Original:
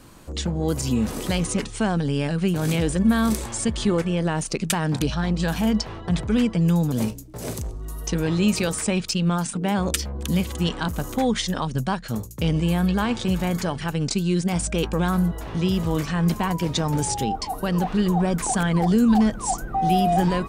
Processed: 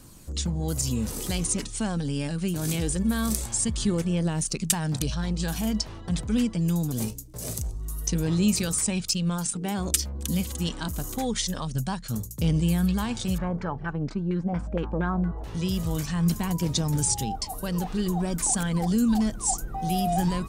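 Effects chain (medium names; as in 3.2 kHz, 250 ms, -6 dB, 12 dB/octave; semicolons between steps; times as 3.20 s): phaser 0.24 Hz, delay 4 ms, feedback 26%; tone controls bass +6 dB, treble +12 dB; 13.38–15.44 s: LFO low-pass saw down 4.3 Hz 550–1800 Hz; trim -8.5 dB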